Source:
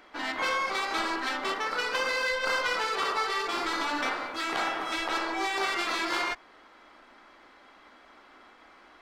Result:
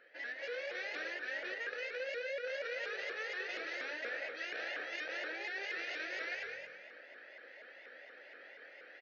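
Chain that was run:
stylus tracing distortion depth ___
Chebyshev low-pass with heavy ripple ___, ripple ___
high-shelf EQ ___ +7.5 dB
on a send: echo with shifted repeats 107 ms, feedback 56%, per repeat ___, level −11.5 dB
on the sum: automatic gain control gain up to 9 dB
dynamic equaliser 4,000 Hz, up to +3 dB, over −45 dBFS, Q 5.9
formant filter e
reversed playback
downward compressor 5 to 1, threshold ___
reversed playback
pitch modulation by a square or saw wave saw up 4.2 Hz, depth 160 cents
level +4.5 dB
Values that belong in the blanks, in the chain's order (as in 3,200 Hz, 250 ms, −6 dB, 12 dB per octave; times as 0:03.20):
0.2 ms, 6,200 Hz, 6 dB, 2,600 Hz, +43 Hz, −44 dBFS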